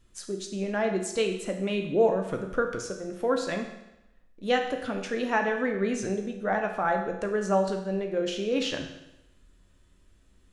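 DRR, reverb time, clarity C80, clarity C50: 3.5 dB, 0.90 s, 9.5 dB, 7.0 dB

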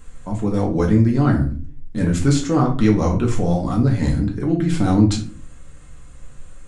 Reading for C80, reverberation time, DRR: 14.5 dB, 0.40 s, -1.5 dB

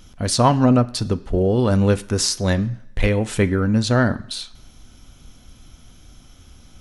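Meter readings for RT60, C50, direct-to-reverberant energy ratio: 0.75 s, 18.5 dB, 10.0 dB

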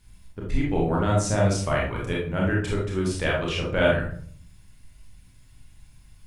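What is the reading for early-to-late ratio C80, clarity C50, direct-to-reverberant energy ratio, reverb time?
8.5 dB, 2.5 dB, -3.5 dB, 0.55 s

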